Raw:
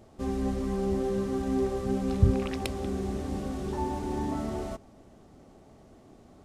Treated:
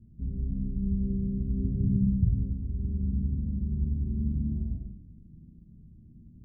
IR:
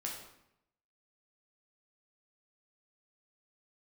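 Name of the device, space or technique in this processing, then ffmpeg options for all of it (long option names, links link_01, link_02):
club heard from the street: -filter_complex "[0:a]asettb=1/sr,asplit=3[link_01][link_02][link_03];[link_01]atrim=end=1.644[link_04];[link_02]atrim=start=1.64:end=2.05,asetpts=PTS-STARTPTS,afade=type=in:duration=0.004:curve=qsin,afade=type=out:start_time=0.406:duration=0.004:curve=qsin,equalizer=frequency=130:width=0.49:gain=14[link_05];[link_03]atrim=start=2.046[link_06];[link_04][link_05]acrossfade=duration=0.004:curve1=hsin:curve2=qsin[link_07];[link_07][link_06]acrossfade=duration=0.004:curve1=qsin:curve2=hsin,alimiter=limit=-17dB:level=0:latency=1:release=474,lowpass=frequency=190:width=0.5412,lowpass=frequency=190:width=1.3066[link_08];[1:a]atrim=start_sample=2205[link_09];[link_08][link_09]afir=irnorm=-1:irlink=0,volume=7.5dB"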